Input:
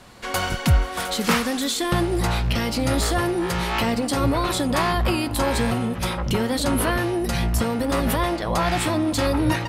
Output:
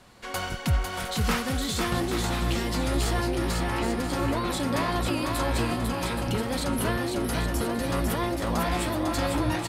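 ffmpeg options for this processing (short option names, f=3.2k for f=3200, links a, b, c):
-filter_complex "[0:a]asplit=3[a][b][c];[a]afade=t=out:st=3.56:d=0.02[d];[b]lowpass=2.4k,afade=t=in:st=3.56:d=0.02,afade=t=out:st=4.09:d=0.02[e];[c]afade=t=in:st=4.09:d=0.02[f];[d][e][f]amix=inputs=3:normalize=0,asplit=2[g][h];[h]aecho=0:1:500|825|1036|1174|1263:0.631|0.398|0.251|0.158|0.1[i];[g][i]amix=inputs=2:normalize=0,volume=-7dB"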